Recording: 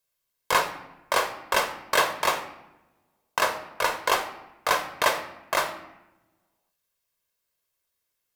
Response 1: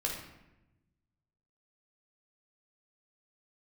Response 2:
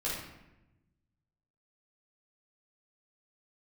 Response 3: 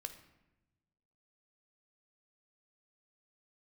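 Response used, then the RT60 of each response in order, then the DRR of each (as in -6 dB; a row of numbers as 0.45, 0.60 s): 3; 0.95, 0.95, 1.0 s; -1.5, -8.0, 8.0 dB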